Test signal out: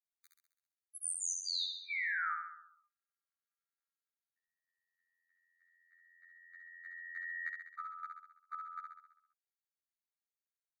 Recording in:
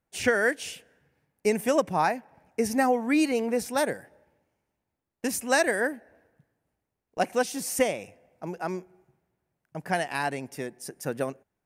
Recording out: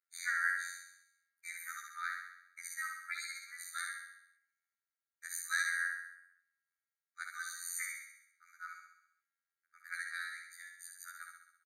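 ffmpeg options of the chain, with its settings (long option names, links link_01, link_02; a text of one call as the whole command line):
ffmpeg -i in.wav -af "afftfilt=real='hypot(re,im)*cos(PI*b)':imag='0':win_size=2048:overlap=0.75,aecho=1:1:66|132|198|264|330|396|462|528:0.631|0.353|0.198|0.111|0.0621|0.0347|0.0195|0.0109,afftfilt=real='re*eq(mod(floor(b*sr/1024/1200),2),1)':imag='im*eq(mod(floor(b*sr/1024/1200),2),1)':win_size=1024:overlap=0.75,volume=-4.5dB" out.wav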